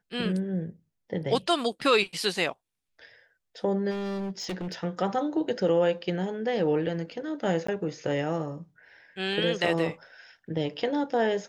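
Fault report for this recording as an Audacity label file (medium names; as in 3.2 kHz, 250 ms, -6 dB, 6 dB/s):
1.810000	1.810000	dropout 2.4 ms
3.900000	4.840000	clipped -29.5 dBFS
7.670000	7.680000	dropout 14 ms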